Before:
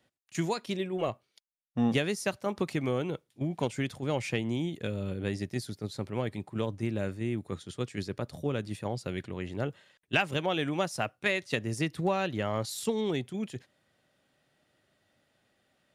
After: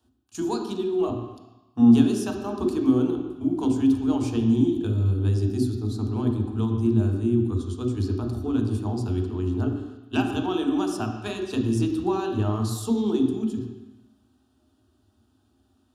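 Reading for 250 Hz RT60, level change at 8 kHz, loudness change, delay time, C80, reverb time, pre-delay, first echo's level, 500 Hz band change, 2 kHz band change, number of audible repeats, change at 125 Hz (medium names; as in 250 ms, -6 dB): 1.0 s, +1.5 dB, +8.0 dB, no echo, 6.5 dB, 1.0 s, 3 ms, no echo, +4.0 dB, -6.5 dB, no echo, +9.5 dB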